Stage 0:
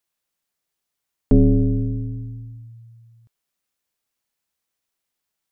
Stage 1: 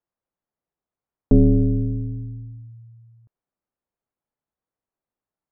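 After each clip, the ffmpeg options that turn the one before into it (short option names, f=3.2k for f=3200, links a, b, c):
-af "lowpass=1k"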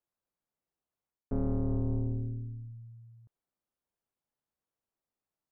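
-af "areverse,acompressor=threshold=-24dB:ratio=20,areverse,aeval=exprs='(tanh(20*val(0)+0.65)-tanh(0.65))/20':c=same"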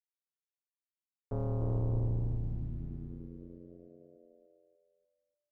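-filter_complex "[0:a]equalizer=f=125:t=o:w=1:g=10,equalizer=f=250:t=o:w=1:g=-6,equalizer=f=500:t=o:w=1:g=8,equalizer=f=1k:t=o:w=1:g=8,aeval=exprs='sgn(val(0))*max(abs(val(0))-0.00119,0)':c=same,asplit=2[a][b];[b]asplit=8[c][d][e][f][g][h][i][j];[c]adelay=295,afreqshift=-88,volume=-5.5dB[k];[d]adelay=590,afreqshift=-176,volume=-10.1dB[l];[e]adelay=885,afreqshift=-264,volume=-14.7dB[m];[f]adelay=1180,afreqshift=-352,volume=-19.2dB[n];[g]adelay=1475,afreqshift=-440,volume=-23.8dB[o];[h]adelay=1770,afreqshift=-528,volume=-28.4dB[p];[i]adelay=2065,afreqshift=-616,volume=-33dB[q];[j]adelay=2360,afreqshift=-704,volume=-37.6dB[r];[k][l][m][n][o][p][q][r]amix=inputs=8:normalize=0[s];[a][s]amix=inputs=2:normalize=0,volume=-7.5dB"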